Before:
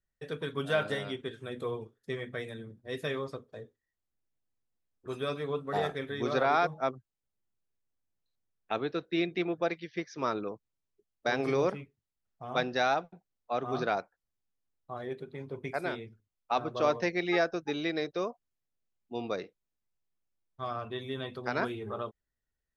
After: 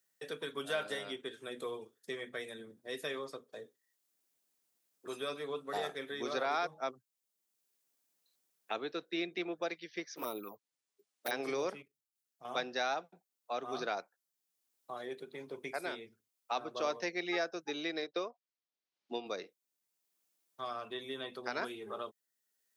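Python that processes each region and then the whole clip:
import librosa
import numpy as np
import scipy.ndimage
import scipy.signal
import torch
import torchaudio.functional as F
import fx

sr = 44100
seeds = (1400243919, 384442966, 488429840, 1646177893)

y = fx.chain(x, sr, fx.env_flanger(rest_ms=11.4, full_db=-27.5),
    fx.resample_bad(factor=3, down='none', up='hold'), at=(10.16, 11.31))
y = fx.chain(y, sr, fx.peak_eq(hz=870.0, db=-6.0, octaves=1.2),
    fx.level_steps(step_db=11), at=(11.82, 12.45))
y = fx.chain(y, sr, fx.lowpass(hz=5000.0, slope=24),
    fx.low_shelf(hz=140.0, db=-8.5),
    fx.transient(attack_db=7, sustain_db=-5), at=(18.02, 19.26))
y = scipy.signal.sosfilt(scipy.signal.butter(2, 270.0, 'highpass', fs=sr, output='sos'), y)
y = fx.high_shelf(y, sr, hz=4300.0, db=11.5)
y = fx.band_squash(y, sr, depth_pct=40)
y = y * librosa.db_to_amplitude(-6.0)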